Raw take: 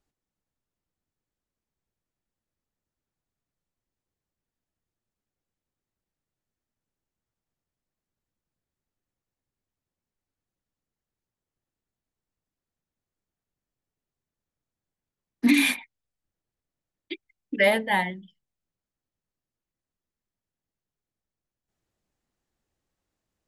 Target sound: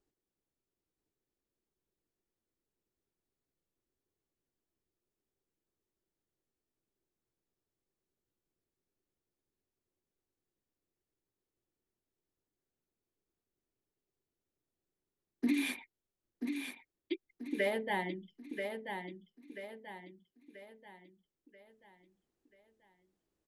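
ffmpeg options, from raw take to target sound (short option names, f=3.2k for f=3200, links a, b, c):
-af "equalizer=f=370:w=1.8:g=12,acompressor=threshold=-27dB:ratio=2.5,aecho=1:1:985|1970|2955|3940|4925:0.473|0.203|0.0875|0.0376|0.0162,volume=-6.5dB"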